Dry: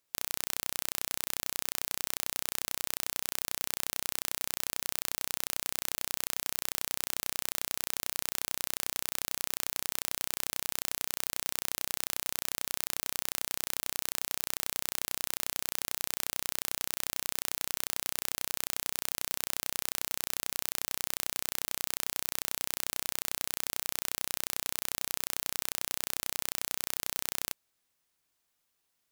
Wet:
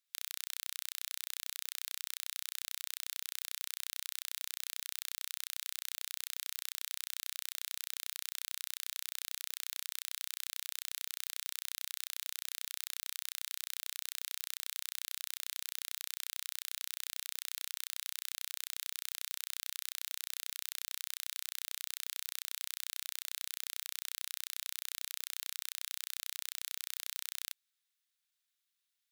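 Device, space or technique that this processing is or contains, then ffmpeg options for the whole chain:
headphones lying on a table: -af "highpass=f=1400:w=0.5412,highpass=f=1400:w=1.3066,equalizer=f=3700:t=o:w=0.38:g=6,volume=0.447"

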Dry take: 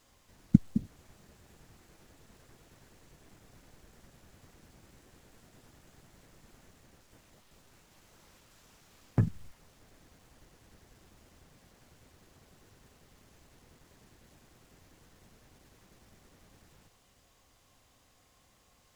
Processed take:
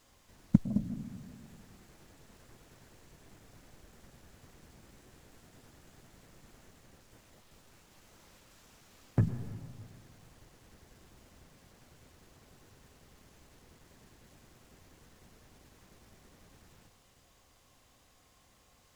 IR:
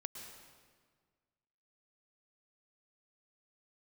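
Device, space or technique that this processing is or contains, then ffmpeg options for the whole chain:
saturated reverb return: -filter_complex "[0:a]asplit=2[s0][s1];[1:a]atrim=start_sample=2205[s2];[s1][s2]afir=irnorm=-1:irlink=0,asoftclip=type=tanh:threshold=0.0501,volume=1.12[s3];[s0][s3]amix=inputs=2:normalize=0,volume=0.631"

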